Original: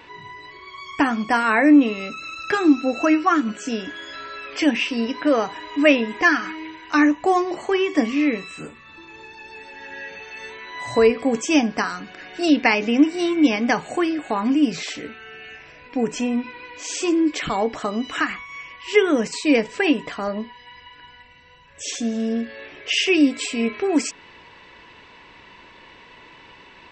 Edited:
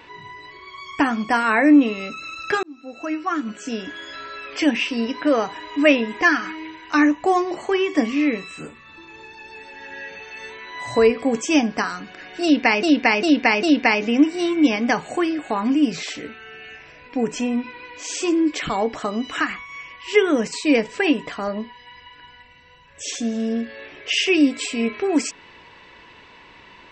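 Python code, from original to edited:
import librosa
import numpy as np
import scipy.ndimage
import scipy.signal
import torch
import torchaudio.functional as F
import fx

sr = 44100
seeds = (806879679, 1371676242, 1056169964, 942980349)

y = fx.edit(x, sr, fx.fade_in_span(start_s=2.63, length_s=1.34),
    fx.repeat(start_s=12.43, length_s=0.4, count=4), tone=tone)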